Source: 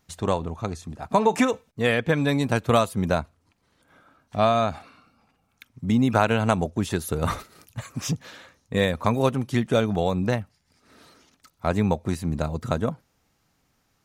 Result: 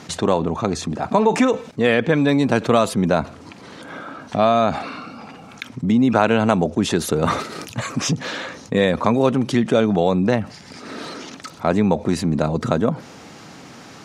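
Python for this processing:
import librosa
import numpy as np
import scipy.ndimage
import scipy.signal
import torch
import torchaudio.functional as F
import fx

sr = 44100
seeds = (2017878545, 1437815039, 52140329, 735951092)

y = fx.bandpass_edges(x, sr, low_hz=210.0, high_hz=6800.0)
y = fx.low_shelf(y, sr, hz=440.0, db=7.0)
y = fx.env_flatten(y, sr, amount_pct=50)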